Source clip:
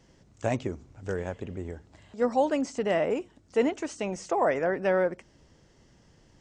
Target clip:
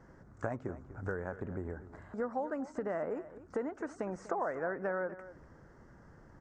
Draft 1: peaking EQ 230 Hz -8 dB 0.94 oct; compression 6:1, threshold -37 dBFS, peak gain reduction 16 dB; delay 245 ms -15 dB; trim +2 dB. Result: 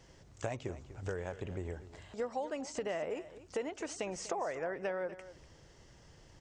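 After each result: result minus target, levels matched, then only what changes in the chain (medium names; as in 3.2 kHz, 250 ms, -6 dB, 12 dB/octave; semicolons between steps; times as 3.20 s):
4 kHz band +19.5 dB; 250 Hz band -2.5 dB
add after compression: resonant high shelf 2.1 kHz -12.5 dB, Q 3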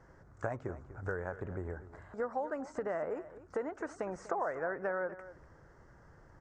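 250 Hz band -3.5 dB
remove: peaking EQ 230 Hz -8 dB 0.94 oct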